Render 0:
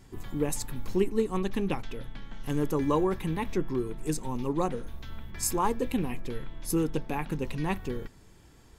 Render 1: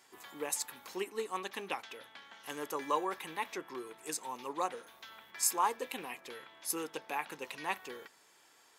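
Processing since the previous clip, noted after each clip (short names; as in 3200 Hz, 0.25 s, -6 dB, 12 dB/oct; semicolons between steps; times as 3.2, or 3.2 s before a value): HPF 750 Hz 12 dB/oct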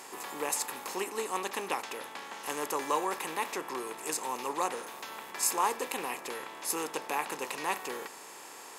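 per-bin compression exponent 0.6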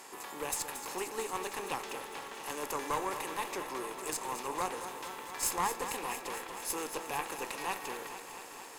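tube stage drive 22 dB, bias 0.65; lo-fi delay 0.228 s, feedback 80%, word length 10-bit, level -10 dB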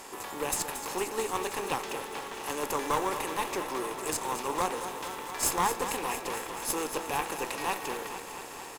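in parallel at -10.5 dB: sample-and-hold 19×; on the sum: echo 0.98 s -21.5 dB; gain +4 dB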